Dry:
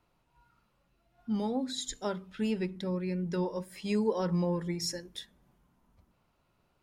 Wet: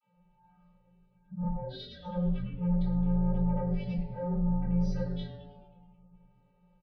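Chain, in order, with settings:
gate on every frequency bin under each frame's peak −25 dB strong
elliptic low-pass filter 4,600 Hz, stop band 40 dB
mains-hum notches 50/100/150/200/250 Hz
compressor whose output falls as the input rises −36 dBFS, ratio −1
channel vocoder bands 32, square 177 Hz
soft clipping −38.5 dBFS, distortion −9 dB
echo with shifted repeats 107 ms, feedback 64%, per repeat −150 Hz, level −15 dB
rectangular room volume 35 cubic metres, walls mixed, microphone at 2.7 metres

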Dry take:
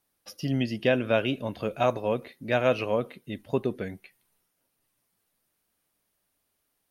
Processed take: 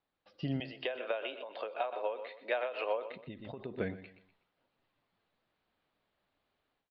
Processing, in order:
downward compressor 6 to 1, threshold −28 dBFS, peak gain reduction 10.5 dB
0:00.60–0:03.11: high-pass filter 450 Hz 24 dB per octave
automatic gain control gain up to 6 dB
Butterworth low-pass 4,300 Hz 48 dB per octave
parametric band 800 Hz +4 dB 1.9 octaves
repeating echo 123 ms, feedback 33%, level −14 dB
every ending faded ahead of time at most 120 dB per second
level −7 dB

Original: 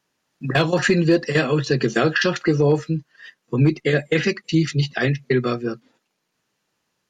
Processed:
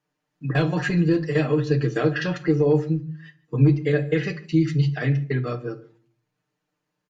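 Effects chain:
high-shelf EQ 2,500 Hz −9.5 dB
comb filter 6.7 ms, depth 81%
single-tap delay 147 ms −24 dB
rectangular room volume 360 cubic metres, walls furnished, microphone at 0.61 metres
level −6.5 dB

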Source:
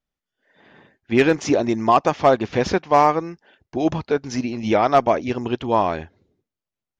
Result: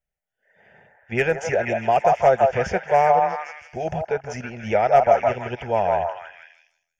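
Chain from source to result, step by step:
phaser with its sweep stopped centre 1,100 Hz, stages 6
echo through a band-pass that steps 161 ms, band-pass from 840 Hz, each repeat 0.7 octaves, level 0 dB

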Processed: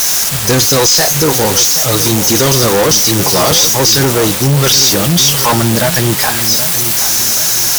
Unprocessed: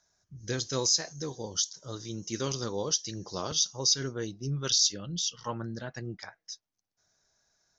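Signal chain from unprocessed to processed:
spike at every zero crossing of −29.5 dBFS
parametric band 790 Hz +7 dB 0.98 octaves
in parallel at −5 dB: bit-depth reduction 6 bits, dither triangular
on the sum: fuzz pedal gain 35 dB, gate −42 dBFS
feedback echo with a low-pass in the loop 776 ms, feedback 43%, level −11 dB
level +5.5 dB

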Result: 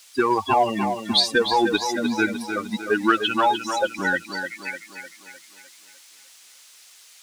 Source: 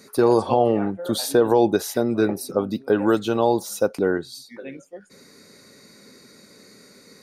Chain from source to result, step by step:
spectral dynamics exaggerated over time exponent 3
octave-band graphic EQ 125/500/1,000/2,000/4,000 Hz −9/−9/+3/+11/+9 dB
in parallel at −7 dB: gain into a clipping stage and back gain 24.5 dB
on the sum: background noise violet −39 dBFS
high-frequency loss of the air 84 metres
on a send: tape delay 303 ms, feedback 53%, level −7 dB, low-pass 5,400 Hz
on the sum: level +5 dB

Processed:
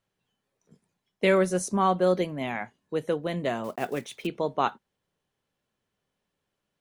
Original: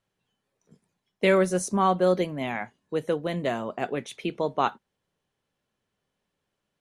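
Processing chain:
0:03.64–0:04.29: one scale factor per block 5 bits
level −1 dB

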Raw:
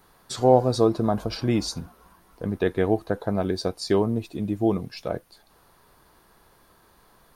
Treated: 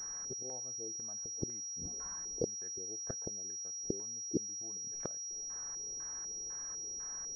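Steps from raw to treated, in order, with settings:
gate with flip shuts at −21 dBFS, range −33 dB
auto-filter low-pass square 2 Hz 430–1,700 Hz
switching amplifier with a slow clock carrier 5,700 Hz
level −2.5 dB

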